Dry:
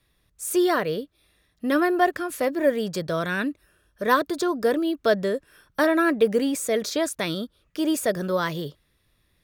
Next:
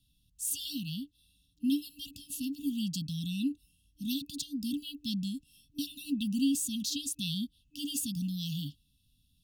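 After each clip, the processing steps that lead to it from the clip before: FFT band-reject 300–2600 Hz; gain -2.5 dB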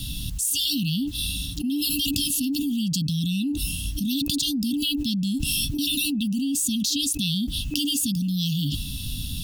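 fast leveller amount 100%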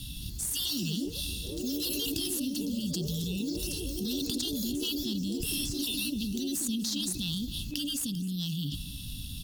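added harmonics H 4 -22 dB, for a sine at -5.5 dBFS; echoes that change speed 0.219 s, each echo +4 st, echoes 3, each echo -6 dB; feedback echo 0.259 s, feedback 50%, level -17 dB; gain -8.5 dB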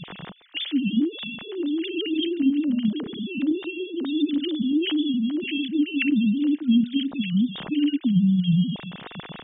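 sine-wave speech; gain +9 dB

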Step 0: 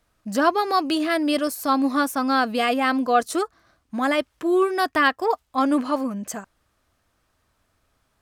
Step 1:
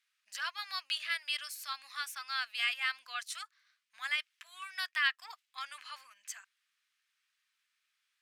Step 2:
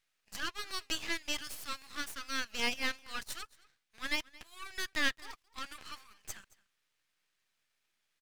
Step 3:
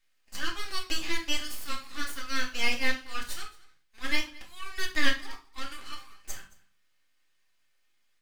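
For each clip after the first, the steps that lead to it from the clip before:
inverse Chebyshev high-pass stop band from 360 Hz, stop band 80 dB; tilt -4.5 dB/oct; gain +3.5 dB
half-wave rectifier; echo 0.222 s -22.5 dB; gain +3.5 dB
reverb RT60 0.35 s, pre-delay 3 ms, DRR -2.5 dB

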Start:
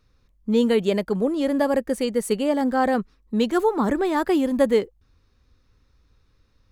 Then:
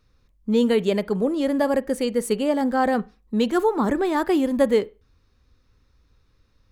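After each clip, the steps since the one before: reverb, pre-delay 33 ms, DRR 19.5 dB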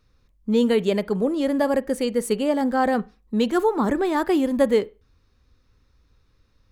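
nothing audible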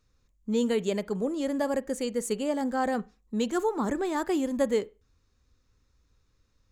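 bell 7000 Hz +12 dB 0.42 oct; gain -7 dB

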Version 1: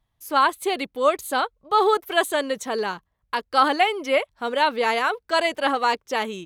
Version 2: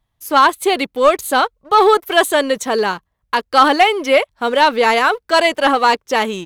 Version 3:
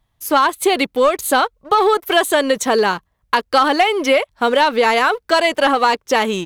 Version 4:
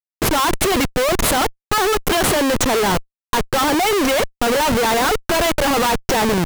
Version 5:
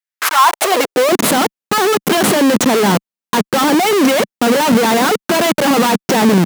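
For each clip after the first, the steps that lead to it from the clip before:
sample leveller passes 1; gain +5 dB
compressor, threshold -15 dBFS, peak gain reduction 9 dB; gain +4 dB
Schmitt trigger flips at -23.5 dBFS
high-pass sweep 1700 Hz -> 200 Hz, 0.13–1.27; gain +2.5 dB

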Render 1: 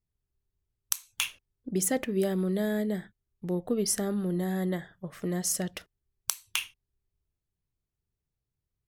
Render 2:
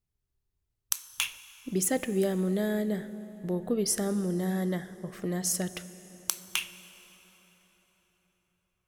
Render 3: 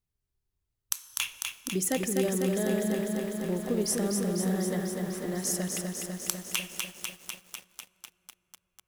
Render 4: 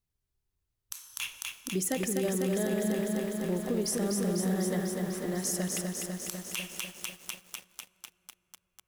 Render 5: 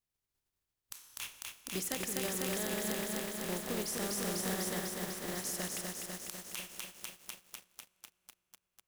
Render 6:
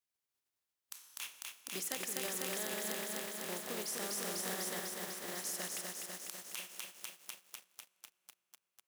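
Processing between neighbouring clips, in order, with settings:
plate-style reverb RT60 4.7 s, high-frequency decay 0.7×, DRR 13.5 dB
lo-fi delay 0.249 s, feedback 80%, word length 8-bit, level -4 dB; gain -1.5 dB
limiter -20.5 dBFS, peak gain reduction 10.5 dB
spectral contrast lowered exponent 0.57; gain -6.5 dB
HPF 450 Hz 6 dB/oct; gain -1.5 dB

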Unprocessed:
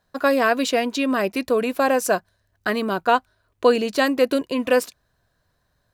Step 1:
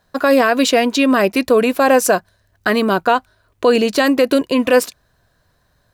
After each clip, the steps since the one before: limiter -12 dBFS, peak gain reduction 7 dB; gain +8 dB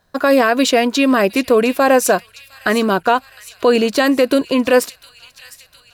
thin delay 0.708 s, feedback 64%, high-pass 2800 Hz, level -14.5 dB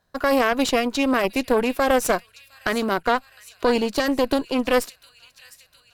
added harmonics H 2 -6 dB, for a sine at -3 dBFS; gain -8 dB

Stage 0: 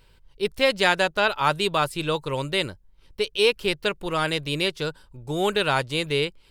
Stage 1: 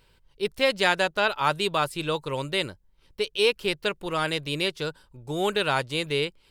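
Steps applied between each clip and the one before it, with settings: low shelf 77 Hz -6 dB; gain -2 dB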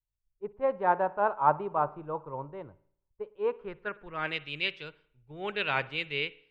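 low-pass sweep 950 Hz -> 2400 Hz, 3.33–4.34; spring tank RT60 1 s, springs 54 ms, chirp 45 ms, DRR 16.5 dB; three-band expander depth 100%; gain -8.5 dB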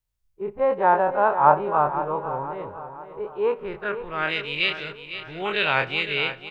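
spectral dilation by 60 ms; on a send: feedback echo 0.506 s, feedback 46%, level -11.5 dB; on the sum: gain +4 dB

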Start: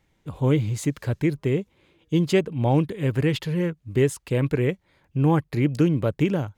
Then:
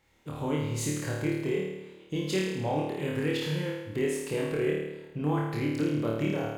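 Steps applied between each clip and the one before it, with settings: low shelf 180 Hz -11 dB; compressor 2:1, threshold -36 dBFS, peak gain reduction 10.5 dB; flutter echo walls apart 4.6 m, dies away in 1 s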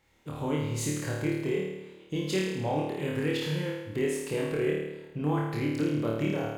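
nothing audible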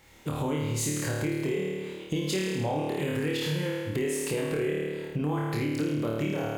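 high shelf 5600 Hz +5.5 dB; in parallel at +1 dB: limiter -25.5 dBFS, peak gain reduction 9.5 dB; on the sum: compressor 2.5:1, threshold -34 dBFS, peak gain reduction 10 dB; gain +4 dB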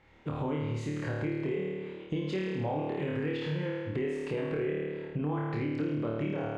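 LPF 2400 Hz 12 dB/oct; gain -3 dB

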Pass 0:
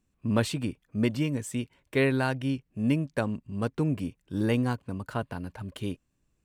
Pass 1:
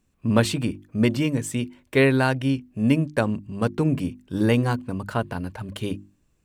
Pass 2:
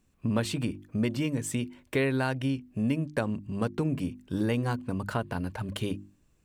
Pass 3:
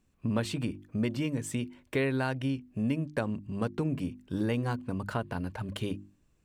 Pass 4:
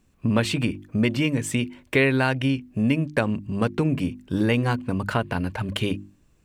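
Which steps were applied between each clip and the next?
notches 50/100/150/200/250/300/350 Hz; gain +6.5 dB
compressor 2.5:1, threshold -28 dBFS, peak gain reduction 10 dB
high shelf 6700 Hz -4 dB; gain -2 dB
dynamic EQ 2400 Hz, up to +6 dB, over -53 dBFS, Q 1.4; gain +8 dB

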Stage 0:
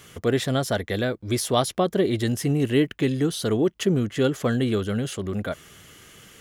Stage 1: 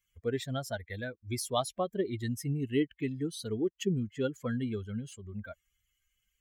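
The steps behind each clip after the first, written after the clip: per-bin expansion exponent 2; gain -6 dB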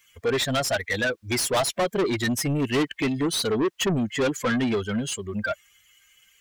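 overdrive pedal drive 30 dB, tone 6700 Hz, clips at -15 dBFS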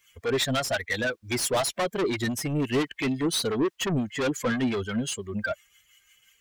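harmonic tremolo 5.8 Hz, depth 50%, crossover 830 Hz

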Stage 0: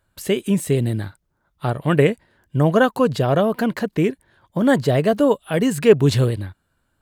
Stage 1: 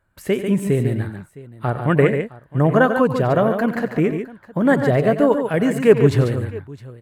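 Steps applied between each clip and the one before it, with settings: resonant high shelf 2600 Hz -7 dB, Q 1.5; tapped delay 91/143/662 ms -13.5/-7.5/-20 dB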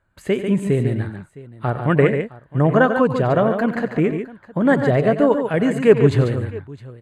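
LPF 7700 Hz 12 dB/oct; notch 5500 Hz, Q 5.2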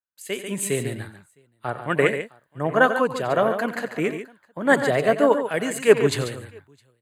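RIAA curve recording; AGC gain up to 4.5 dB; three-band expander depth 70%; gain -3.5 dB

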